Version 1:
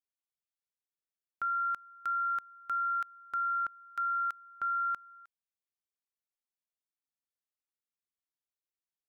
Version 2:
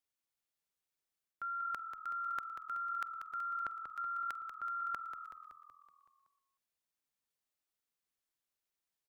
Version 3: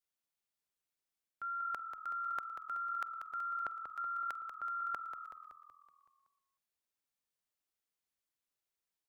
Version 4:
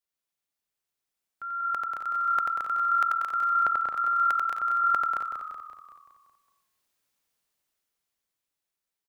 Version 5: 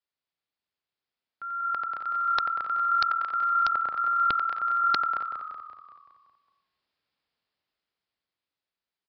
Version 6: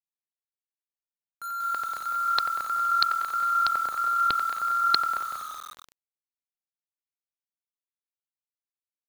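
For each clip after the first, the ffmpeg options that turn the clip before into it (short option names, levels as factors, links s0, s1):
-filter_complex "[0:a]areverse,acompressor=threshold=0.00794:ratio=6,areverse,asplit=8[s0][s1][s2][s3][s4][s5][s6][s7];[s1]adelay=188,afreqshift=-41,volume=0.398[s8];[s2]adelay=376,afreqshift=-82,volume=0.226[s9];[s3]adelay=564,afreqshift=-123,volume=0.129[s10];[s4]adelay=752,afreqshift=-164,volume=0.0741[s11];[s5]adelay=940,afreqshift=-205,volume=0.0422[s12];[s6]adelay=1128,afreqshift=-246,volume=0.024[s13];[s7]adelay=1316,afreqshift=-287,volume=0.0136[s14];[s0][s8][s9][s10][s11][s12][s13][s14]amix=inputs=8:normalize=0,volume=1.41"
-af "adynamicequalizer=threshold=0.00141:dfrequency=650:dqfactor=0.94:tfrequency=650:tqfactor=0.94:attack=5:release=100:ratio=0.375:range=3.5:mode=boostabove:tftype=bell,volume=0.794"
-filter_complex "[0:a]dynaudnorm=f=220:g=17:m=3.55,asplit=2[s0][s1];[s1]aecho=0:1:89|221|259:0.668|0.562|0.211[s2];[s0][s2]amix=inputs=2:normalize=0"
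-af "highpass=43,aresample=11025,aeval=exprs='(mod(5.96*val(0)+1,2)-1)/5.96':c=same,aresample=44100"
-af "equalizer=f=4200:t=o:w=0.24:g=12,acrusher=bits=6:mix=0:aa=0.000001"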